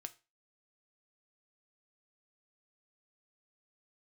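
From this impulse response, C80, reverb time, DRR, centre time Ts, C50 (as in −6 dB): 25.0 dB, 0.30 s, 8.5 dB, 3 ms, 19.5 dB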